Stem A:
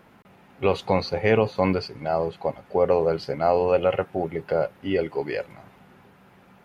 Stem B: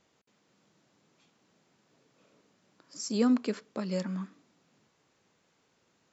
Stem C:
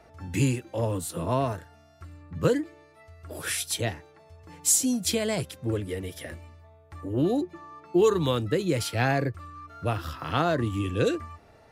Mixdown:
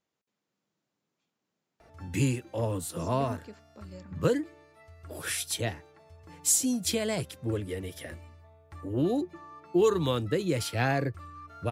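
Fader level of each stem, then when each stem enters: muted, −15.0 dB, −2.5 dB; muted, 0.00 s, 1.80 s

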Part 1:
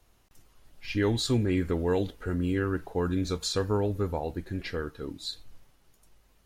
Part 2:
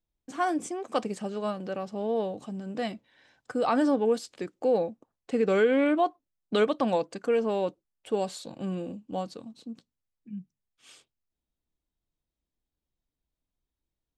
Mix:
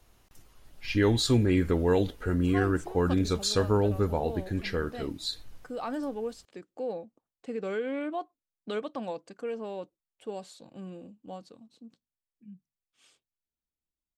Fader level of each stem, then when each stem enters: +2.5, −9.5 decibels; 0.00, 2.15 seconds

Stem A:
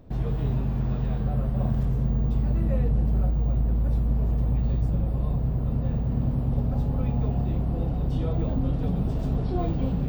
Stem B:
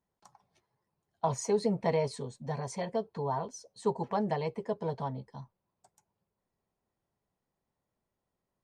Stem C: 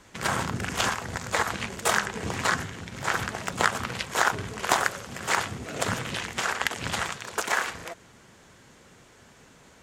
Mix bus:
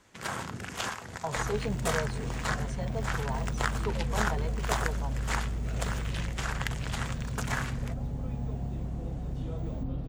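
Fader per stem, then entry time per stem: −9.0, −5.0, −8.0 decibels; 1.25, 0.00, 0.00 seconds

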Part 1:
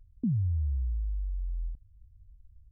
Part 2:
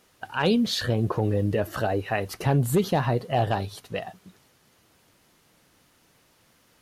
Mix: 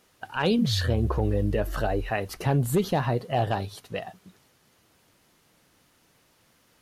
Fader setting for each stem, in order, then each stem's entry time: 0.0, −1.5 decibels; 0.35, 0.00 seconds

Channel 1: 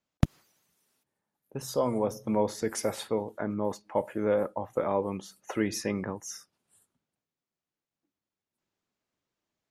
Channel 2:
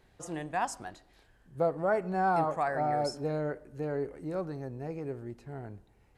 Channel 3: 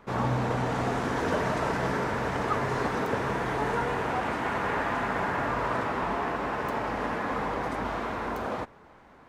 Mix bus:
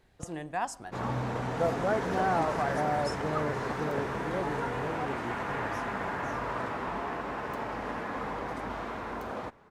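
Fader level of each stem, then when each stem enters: −19.0, −1.0, −5.0 decibels; 0.00, 0.00, 0.85 seconds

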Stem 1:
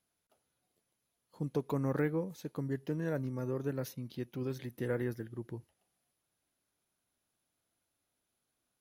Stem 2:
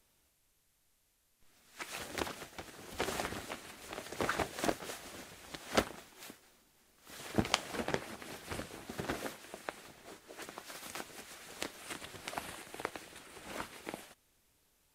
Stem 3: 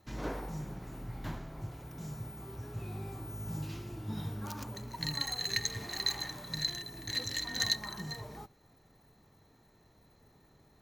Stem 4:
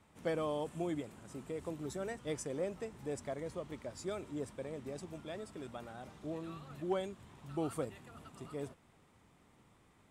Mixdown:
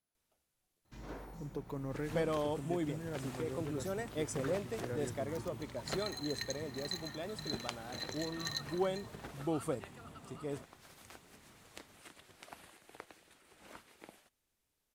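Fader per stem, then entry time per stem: −8.0, −11.5, −9.5, +1.5 decibels; 0.00, 0.15, 0.85, 1.90 seconds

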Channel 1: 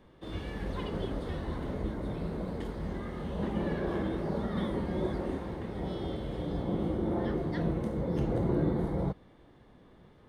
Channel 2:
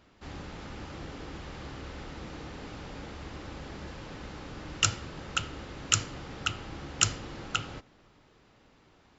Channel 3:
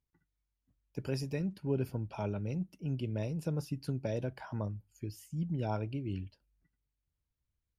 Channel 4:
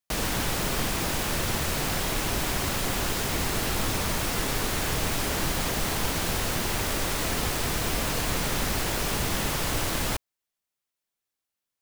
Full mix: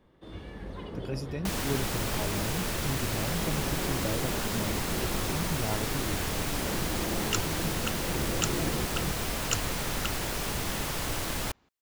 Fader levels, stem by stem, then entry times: −4.5, −6.0, 0.0, −4.5 decibels; 0.00, 2.50, 0.00, 1.35 seconds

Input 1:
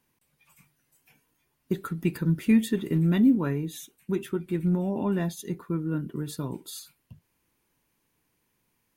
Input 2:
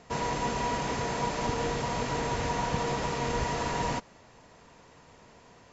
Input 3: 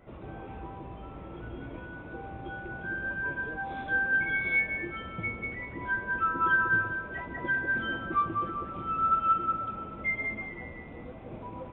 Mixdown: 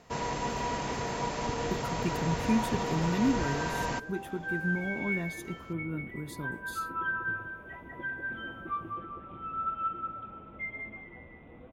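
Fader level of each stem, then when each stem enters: −7.0, −2.5, −7.5 decibels; 0.00, 0.00, 0.55 seconds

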